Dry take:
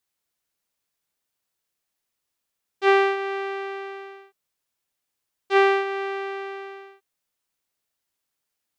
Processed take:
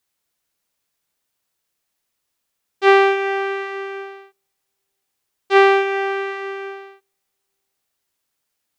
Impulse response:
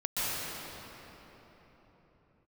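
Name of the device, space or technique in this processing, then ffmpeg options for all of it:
keyed gated reverb: -filter_complex "[0:a]asplit=3[a][b][c];[1:a]atrim=start_sample=2205[d];[b][d]afir=irnorm=-1:irlink=0[e];[c]apad=whole_len=387240[f];[e][f]sidechaingate=range=-43dB:threshold=-37dB:ratio=16:detection=peak,volume=-20dB[g];[a][g]amix=inputs=2:normalize=0,volume=5dB"

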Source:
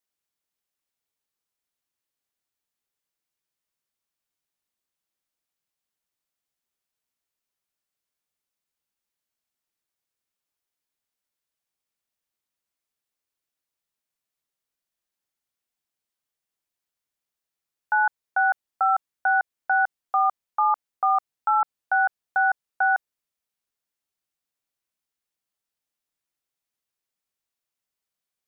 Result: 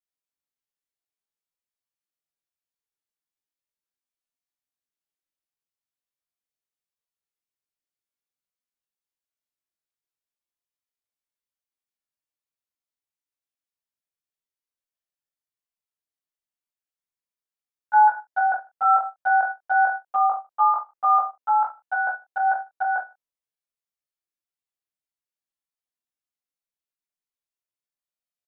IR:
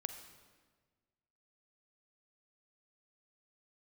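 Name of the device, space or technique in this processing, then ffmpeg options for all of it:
double-tracked vocal: -filter_complex "[0:a]asplit=2[a][b];[b]adelay=27,volume=-10dB[c];[a][c]amix=inputs=2:normalize=0,flanger=delay=16:depth=2.4:speed=0.23,adynamicequalizer=threshold=0.02:dfrequency=640:dqfactor=1:tfrequency=640:tqfactor=1:attack=5:release=100:ratio=0.375:range=3:mode=boostabove:tftype=bell,aecho=1:1:20|44|72.8|107.4|148.8:0.631|0.398|0.251|0.158|0.1,agate=range=-9dB:threshold=-27dB:ratio=16:detection=peak"

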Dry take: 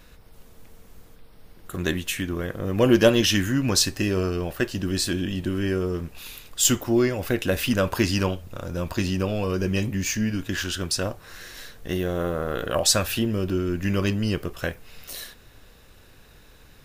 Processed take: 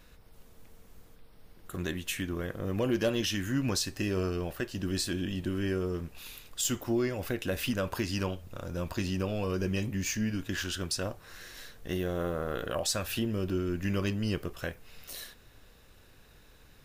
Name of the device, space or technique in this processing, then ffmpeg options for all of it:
clipper into limiter: -af "asoftclip=type=hard:threshold=-9dB,alimiter=limit=-14.5dB:level=0:latency=1:release=217,volume=-6dB"

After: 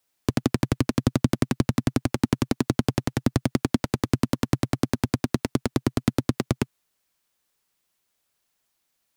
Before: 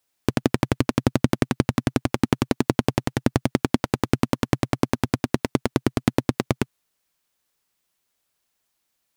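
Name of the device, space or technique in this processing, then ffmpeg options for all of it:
one-band saturation: -filter_complex "[0:a]acrossover=split=220|2600[a][b][c];[b]asoftclip=type=tanh:threshold=-15dB[d];[a][d][c]amix=inputs=3:normalize=0"

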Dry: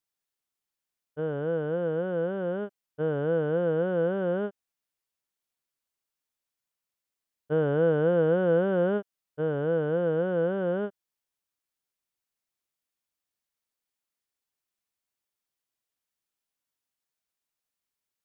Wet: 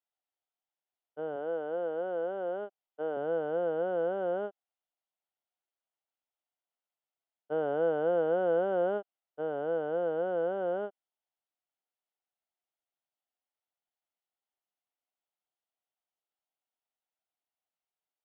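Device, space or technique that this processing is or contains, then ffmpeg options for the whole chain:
phone earpiece: -filter_complex "[0:a]asettb=1/sr,asplit=3[a][b][c];[a]atrim=end=1.364[d];[b]atrim=start=1.36:end=3.17,asetpts=PTS-STARTPTS,afade=t=in:d=0.004:c=qsin,afade=t=out:st=1.806:d=0.004:c=qsin,highpass=210[e];[c]atrim=start=3.166[f];[d][e]acrossfade=d=0.004:c1=hsin:c2=qsin[g];[g][f]acrossfade=d=0.004:c1=qsin:c2=hsin,highpass=450,equalizer=f=460:t=q:w=4:g=-4,equalizer=f=730:t=q:w=4:g=6,equalizer=f=1.1k:t=q:w=4:g=-6,equalizer=f=1.7k:t=q:w=4:g=-9,equalizer=f=2.4k:t=q:w=4:g=-9,lowpass=f=3k:w=0.5412,lowpass=f=3k:w=1.3066"

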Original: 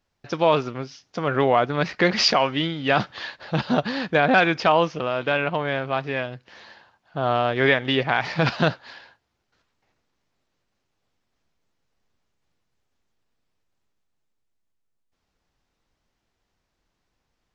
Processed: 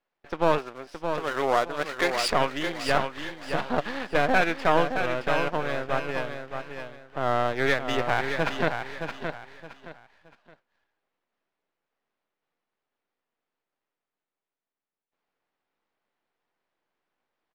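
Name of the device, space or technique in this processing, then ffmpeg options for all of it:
crystal radio: -filter_complex "[0:a]highpass=340,lowpass=2.6k,aeval=exprs='if(lt(val(0),0),0.251*val(0),val(0))':c=same,asettb=1/sr,asplit=3[a][b][c];[a]atrim=end=0.584[d];[b]atrim=start=0.58:end=2.3,asetpts=PTS-STARTPTS,afade=t=in:d=0.004:c=qsin,afade=t=out:st=1.716:d=0.004:c=qsin,bass=f=250:g=-11,treble=f=4k:g=8[e];[c]atrim=start=2.296[f];[d][e]acrossfade=d=0.004:c1=hsin:c2=qsin[g];[g][f]acrossfade=d=0.004:c1=qsin:c2=hsin,aecho=1:1:619|1238|1857:0.447|0.125|0.035"

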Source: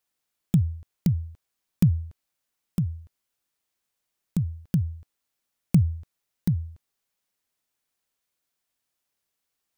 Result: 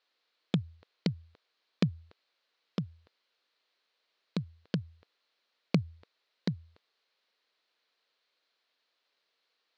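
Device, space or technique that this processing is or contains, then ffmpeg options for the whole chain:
phone earpiece: -af "highpass=430,equalizer=f=470:t=q:w=4:g=4,equalizer=f=810:t=q:w=4:g=-4,equalizer=f=4.2k:t=q:w=4:g=7,lowpass=f=4.3k:w=0.5412,lowpass=f=4.3k:w=1.3066,volume=7.5dB"

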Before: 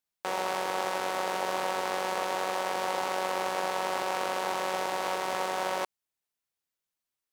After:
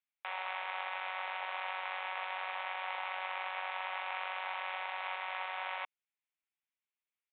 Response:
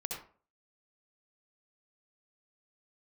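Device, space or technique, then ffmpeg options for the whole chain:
musical greeting card: -af "aresample=8000,aresample=44100,highpass=f=740:w=0.5412,highpass=f=740:w=1.3066,equalizer=f=2.3k:t=o:w=0.59:g=8.5,volume=-7.5dB"

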